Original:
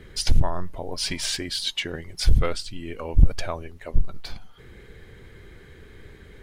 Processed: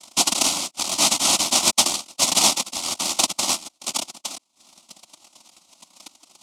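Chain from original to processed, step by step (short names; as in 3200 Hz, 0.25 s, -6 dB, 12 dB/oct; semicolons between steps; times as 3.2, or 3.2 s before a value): reverb removal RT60 0.8 s; sample leveller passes 3; noise vocoder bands 1; fixed phaser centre 450 Hz, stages 6; gain +1.5 dB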